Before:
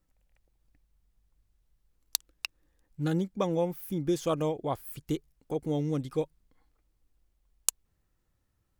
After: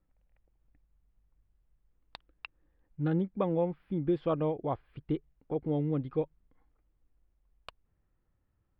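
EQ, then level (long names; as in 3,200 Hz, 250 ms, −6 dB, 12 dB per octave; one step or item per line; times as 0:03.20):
moving average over 7 samples
high-frequency loss of the air 310 metres
0.0 dB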